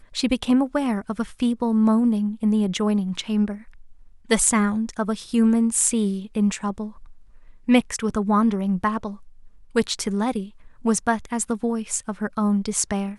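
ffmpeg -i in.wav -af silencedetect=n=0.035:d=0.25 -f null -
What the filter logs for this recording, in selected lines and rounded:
silence_start: 3.55
silence_end: 4.30 | silence_duration: 0.75
silence_start: 6.88
silence_end: 7.69 | silence_duration: 0.81
silence_start: 9.12
silence_end: 9.76 | silence_duration: 0.63
silence_start: 10.44
silence_end: 10.85 | silence_duration: 0.41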